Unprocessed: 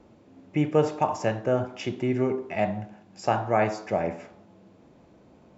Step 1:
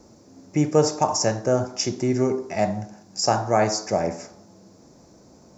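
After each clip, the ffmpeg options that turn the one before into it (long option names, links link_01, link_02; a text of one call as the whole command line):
ffmpeg -i in.wav -af "highshelf=frequency=4100:width_type=q:width=3:gain=10.5,volume=3.5dB" out.wav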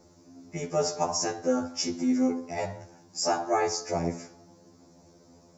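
ffmpeg -i in.wav -af "afftfilt=real='re*2*eq(mod(b,4),0)':imag='im*2*eq(mod(b,4),0)':win_size=2048:overlap=0.75,volume=-2.5dB" out.wav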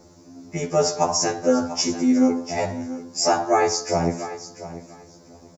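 ffmpeg -i in.wav -af "aecho=1:1:692|1384:0.2|0.0339,volume=7dB" out.wav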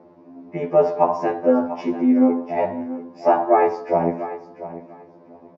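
ffmpeg -i in.wav -af "highpass=180,equalizer=frequency=230:width_type=q:width=4:gain=4,equalizer=frequency=380:width_type=q:width=4:gain=4,equalizer=frequency=620:width_type=q:width=4:gain=5,equalizer=frequency=970:width_type=q:width=4:gain=6,equalizer=frequency=1400:width_type=q:width=4:gain=-5,equalizer=frequency=2100:width_type=q:width=4:gain=-3,lowpass=frequency=2500:width=0.5412,lowpass=frequency=2500:width=1.3066" out.wav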